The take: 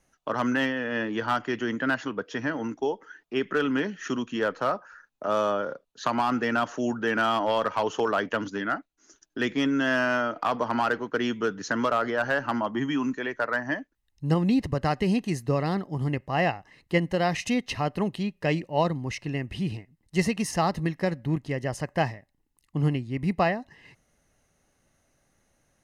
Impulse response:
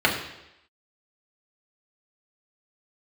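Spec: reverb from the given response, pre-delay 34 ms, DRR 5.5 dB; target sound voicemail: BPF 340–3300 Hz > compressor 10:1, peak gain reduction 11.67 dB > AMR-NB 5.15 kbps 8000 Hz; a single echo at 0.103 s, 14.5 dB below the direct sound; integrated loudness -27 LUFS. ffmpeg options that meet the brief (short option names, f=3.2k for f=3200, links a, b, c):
-filter_complex "[0:a]aecho=1:1:103:0.188,asplit=2[a][b];[1:a]atrim=start_sample=2205,adelay=34[c];[b][c]afir=irnorm=-1:irlink=0,volume=-23.5dB[d];[a][d]amix=inputs=2:normalize=0,highpass=340,lowpass=3.3k,acompressor=threshold=-29dB:ratio=10,volume=9.5dB" -ar 8000 -c:a libopencore_amrnb -b:a 5150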